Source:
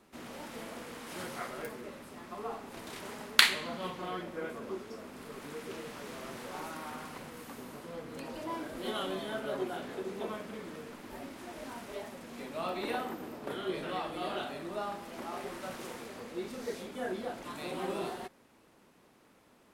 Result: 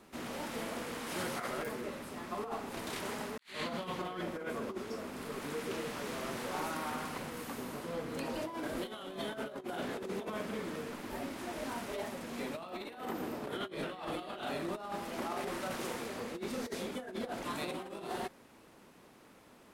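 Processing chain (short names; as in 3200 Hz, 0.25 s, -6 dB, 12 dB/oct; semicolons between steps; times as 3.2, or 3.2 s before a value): negative-ratio compressor -40 dBFS, ratio -0.5; gain +1.5 dB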